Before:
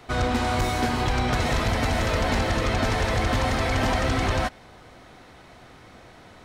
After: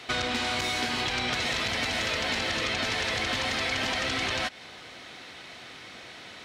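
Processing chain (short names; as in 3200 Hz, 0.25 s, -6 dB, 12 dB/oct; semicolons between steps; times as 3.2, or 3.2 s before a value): weighting filter D; compressor, threshold -26 dBFS, peak gain reduction 8.5 dB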